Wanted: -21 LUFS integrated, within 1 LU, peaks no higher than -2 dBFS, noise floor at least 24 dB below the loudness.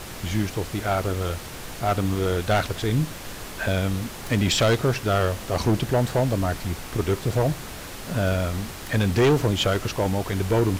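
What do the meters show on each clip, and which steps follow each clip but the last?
clipped samples 1.4%; clipping level -14.5 dBFS; noise floor -37 dBFS; noise floor target -49 dBFS; loudness -24.5 LUFS; peak level -14.5 dBFS; loudness target -21.0 LUFS
-> clip repair -14.5 dBFS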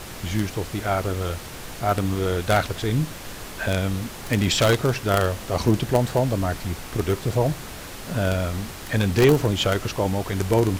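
clipped samples 0.0%; noise floor -37 dBFS; noise floor target -48 dBFS
-> noise print and reduce 11 dB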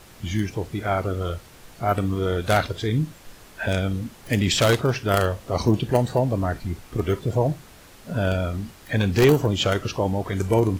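noise floor -48 dBFS; loudness -23.5 LUFS; peak level -5.5 dBFS; loudness target -21.0 LUFS
-> trim +2.5 dB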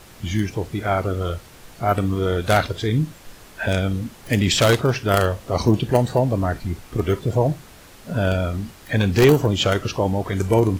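loudness -21.0 LUFS; peak level -3.0 dBFS; noise floor -45 dBFS

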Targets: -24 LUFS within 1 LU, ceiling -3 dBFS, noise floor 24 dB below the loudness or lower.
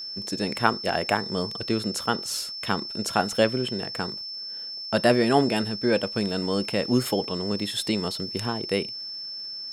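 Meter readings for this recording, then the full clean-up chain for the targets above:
tick rate 46 per s; steady tone 5.3 kHz; tone level -33 dBFS; loudness -26.0 LUFS; peak level -2.5 dBFS; loudness target -24.0 LUFS
-> de-click; band-stop 5.3 kHz, Q 30; trim +2 dB; peak limiter -3 dBFS

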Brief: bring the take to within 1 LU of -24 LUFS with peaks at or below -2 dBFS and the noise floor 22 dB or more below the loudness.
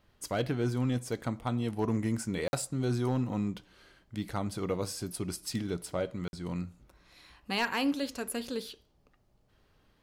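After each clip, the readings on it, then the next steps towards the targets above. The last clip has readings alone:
clipped samples 0.3%; clipping level -22.0 dBFS; dropouts 2; longest dropout 51 ms; loudness -33.5 LUFS; peak level -22.0 dBFS; loudness target -24.0 LUFS
-> clip repair -22 dBFS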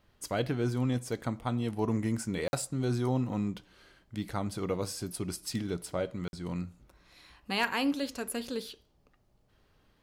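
clipped samples 0.0%; dropouts 2; longest dropout 51 ms
-> interpolate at 2.48/6.28 s, 51 ms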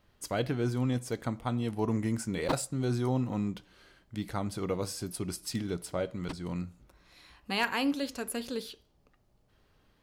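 dropouts 0; loudness -33.0 LUFS; peak level -13.5 dBFS; loudness target -24.0 LUFS
-> trim +9 dB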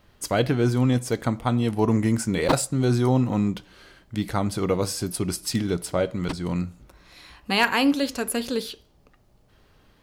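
loudness -24.0 LUFS; peak level -4.5 dBFS; noise floor -59 dBFS

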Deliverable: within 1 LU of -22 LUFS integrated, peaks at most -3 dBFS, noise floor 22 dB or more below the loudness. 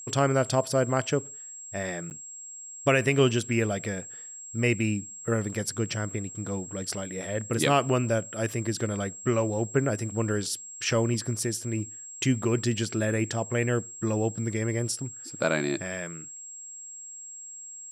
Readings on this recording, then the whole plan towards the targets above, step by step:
dropouts 1; longest dropout 9.5 ms; steady tone 7.6 kHz; tone level -40 dBFS; loudness -28.0 LUFS; peak level -11.0 dBFS; loudness target -22.0 LUFS
-> interpolate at 2.10 s, 9.5 ms; band-stop 7.6 kHz, Q 30; trim +6 dB

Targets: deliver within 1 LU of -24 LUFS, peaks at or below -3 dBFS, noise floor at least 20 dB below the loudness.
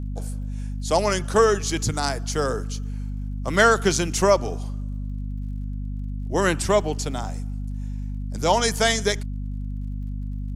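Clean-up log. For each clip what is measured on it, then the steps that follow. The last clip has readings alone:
tick rate 54 per s; hum 50 Hz; highest harmonic 250 Hz; hum level -27 dBFS; loudness -24.5 LUFS; peak level -3.5 dBFS; loudness target -24.0 LUFS
-> de-click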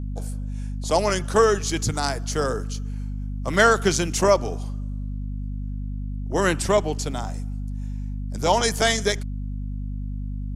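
tick rate 0.095 per s; hum 50 Hz; highest harmonic 250 Hz; hum level -27 dBFS
-> de-hum 50 Hz, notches 5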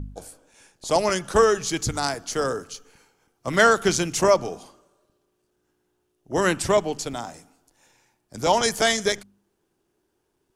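hum not found; loudness -22.5 LUFS; peak level -3.5 dBFS; loudness target -24.0 LUFS
-> trim -1.5 dB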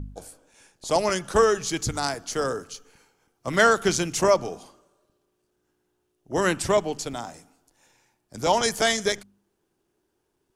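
loudness -24.0 LUFS; peak level -5.0 dBFS; noise floor -75 dBFS

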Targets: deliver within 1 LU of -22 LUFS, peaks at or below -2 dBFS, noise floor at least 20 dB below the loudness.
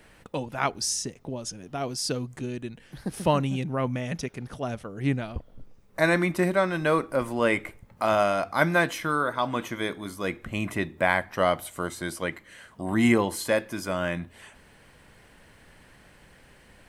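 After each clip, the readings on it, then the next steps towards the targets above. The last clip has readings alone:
loudness -27.5 LUFS; peak level -6.0 dBFS; loudness target -22.0 LUFS
-> trim +5.5 dB; peak limiter -2 dBFS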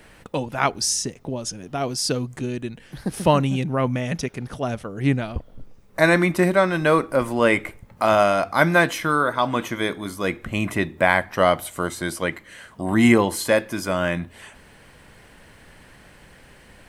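loudness -22.0 LUFS; peak level -2.0 dBFS; noise floor -50 dBFS

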